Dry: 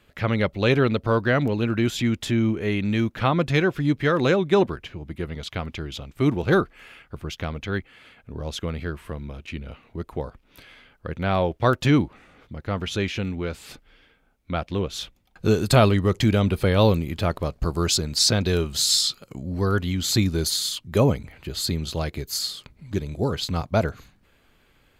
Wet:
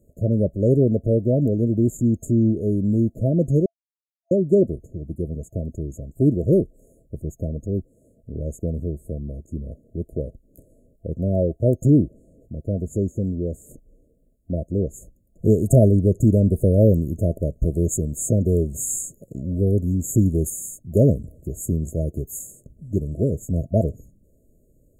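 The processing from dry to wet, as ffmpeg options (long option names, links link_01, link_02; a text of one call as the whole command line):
ffmpeg -i in.wav -filter_complex "[0:a]asplit=3[link_01][link_02][link_03];[link_01]atrim=end=3.66,asetpts=PTS-STARTPTS,afade=type=out:start_time=3.656:duration=0.004:curve=hsin[link_04];[link_02]atrim=start=3.66:end=4.31,asetpts=PTS-STARTPTS,volume=0[link_05];[link_03]atrim=start=4.31,asetpts=PTS-STARTPTS,afade=type=in:duration=0.004:curve=hsin[link_06];[link_04][link_05][link_06]concat=n=3:v=0:a=1,afftfilt=real='re*(1-between(b*sr/4096,670,6500))':imag='im*(1-between(b*sr/4096,670,6500))':win_size=4096:overlap=0.75,lowshelf=frequency=420:gain=4.5" out.wav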